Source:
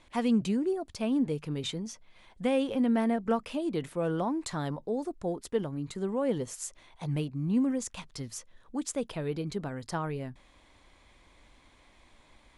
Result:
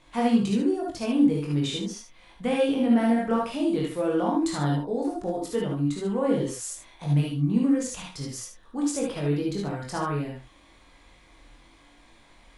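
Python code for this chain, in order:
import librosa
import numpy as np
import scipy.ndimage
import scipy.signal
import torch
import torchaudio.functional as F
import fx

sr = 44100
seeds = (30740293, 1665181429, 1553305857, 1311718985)

p1 = x + fx.room_early_taps(x, sr, ms=(21, 76), db=(-4.0, -7.5), dry=0)
y = fx.rev_gated(p1, sr, seeds[0], gate_ms=90, shape='rising', drr_db=0.5)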